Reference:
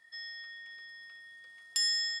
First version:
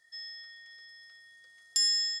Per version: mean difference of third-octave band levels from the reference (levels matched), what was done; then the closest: 2.5 dB: fifteen-band EQ 100 Hz -3 dB, 250 Hz -10 dB, 1000 Hz -9 dB, 2500 Hz -9 dB, 6300 Hz +7 dB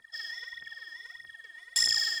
5.0 dB: phaser 1.6 Hz, delay 3.4 ms, feedback 77%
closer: first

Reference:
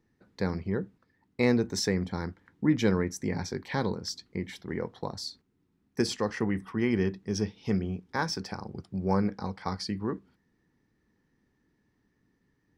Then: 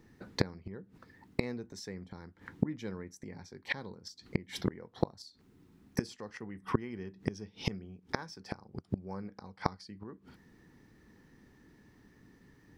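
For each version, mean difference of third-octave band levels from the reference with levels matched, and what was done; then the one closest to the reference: 6.0 dB: flipped gate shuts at -27 dBFS, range -27 dB; gain +11.5 dB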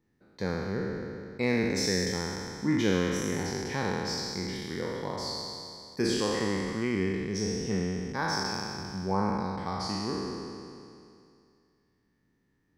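10.5 dB: spectral trails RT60 2.46 s; gain -4.5 dB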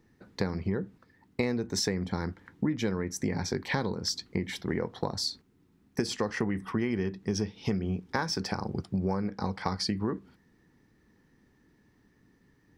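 3.5 dB: compressor 12:1, threshold -33 dBFS, peak gain reduction 15 dB; gain +7.5 dB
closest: third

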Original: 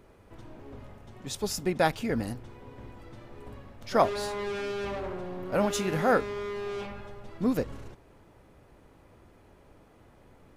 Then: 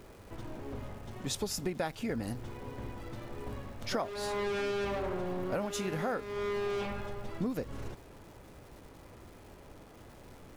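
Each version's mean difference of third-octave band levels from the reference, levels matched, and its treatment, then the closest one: 7.5 dB: compressor 8:1, threshold -35 dBFS, peak gain reduction 18 dB; crackle 540/s -54 dBFS; gain +4 dB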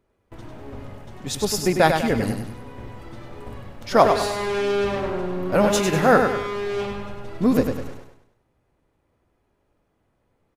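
4.5 dB: gate with hold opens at -44 dBFS; on a send: feedback echo 99 ms, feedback 42%, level -6 dB; on the sum: gain +7.5 dB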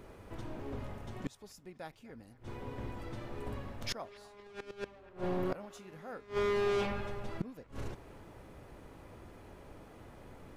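11.5 dB: flipped gate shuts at -28 dBFS, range -26 dB; on a send: band-limited delay 0.249 s, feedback 36%, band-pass 1500 Hz, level -17 dB; on the sum: gain +4 dB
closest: second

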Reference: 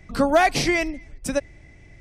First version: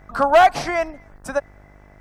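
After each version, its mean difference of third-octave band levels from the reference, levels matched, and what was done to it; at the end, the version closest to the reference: 5.5 dB: band shelf 1000 Hz +15.5 dB; requantised 12-bit, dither triangular; buzz 50 Hz, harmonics 37, -42 dBFS -5 dB/oct; gain -7 dB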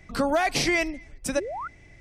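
2.5 dB: low shelf 380 Hz -4.5 dB; limiter -14 dBFS, peak gain reduction 6.5 dB; painted sound rise, 1.35–1.68, 270–1500 Hz -33 dBFS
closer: second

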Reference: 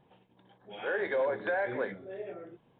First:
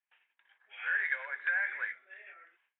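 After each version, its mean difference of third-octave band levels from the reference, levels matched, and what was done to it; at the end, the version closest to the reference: 10.0 dB: gate with hold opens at -54 dBFS; Butterworth band-pass 2000 Hz, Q 1.8; gain +7 dB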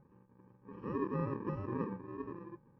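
7.0 dB: FFT order left unsorted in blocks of 64 samples; LPF 1400 Hz 24 dB/oct; gain +4.5 dB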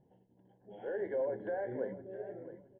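4.5 dB: running mean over 36 samples; on a send: feedback echo 0.666 s, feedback 22%, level -14 dB; on the sum: gain -1.5 dB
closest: third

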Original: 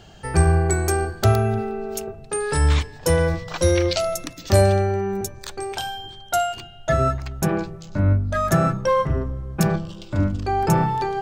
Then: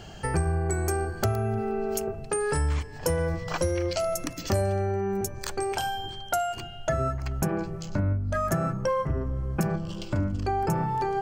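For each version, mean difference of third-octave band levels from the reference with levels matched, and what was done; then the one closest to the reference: 4.0 dB: notch 3700 Hz, Q 7.2; dynamic EQ 3600 Hz, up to -5 dB, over -41 dBFS, Q 0.83; compressor 4:1, threshold -28 dBFS, peak gain reduction 14 dB; gain +3 dB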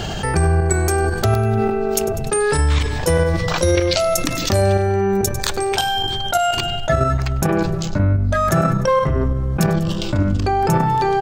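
5.5 dB: level quantiser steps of 9 dB; feedback echo 99 ms, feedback 49%, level -22 dB; fast leveller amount 70%; gain +3 dB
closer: first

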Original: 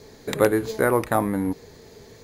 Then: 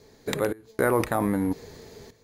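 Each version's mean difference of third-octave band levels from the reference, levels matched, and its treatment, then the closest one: 5.0 dB: in parallel at -0.5 dB: negative-ratio compressor -25 dBFS, ratio -0.5; on the sum: random-step tremolo 3.8 Hz, depth 95%; gain -4 dB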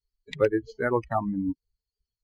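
15.0 dB: per-bin expansion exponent 3; air absorption 170 m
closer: first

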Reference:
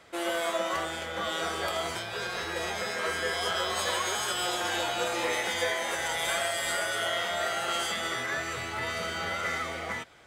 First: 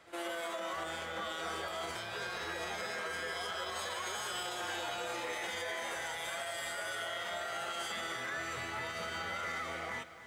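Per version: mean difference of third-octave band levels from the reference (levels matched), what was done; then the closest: 2.0 dB: bell 1300 Hz +2.5 dB 2 oct; pre-echo 66 ms -20 dB; limiter -23.5 dBFS, peak gain reduction 9.5 dB; lo-fi delay 0.285 s, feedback 35%, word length 9-bit, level -13 dB; gain -6.5 dB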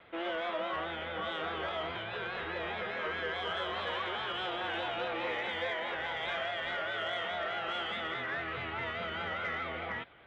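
8.0 dB: steep low-pass 3500 Hz 48 dB/oct; in parallel at 0 dB: limiter -28 dBFS, peak gain reduction 11.5 dB; on the sum: vibrato 4.8 Hz 63 cents; soft clip -15.5 dBFS, distortion -27 dB; gain -8 dB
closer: first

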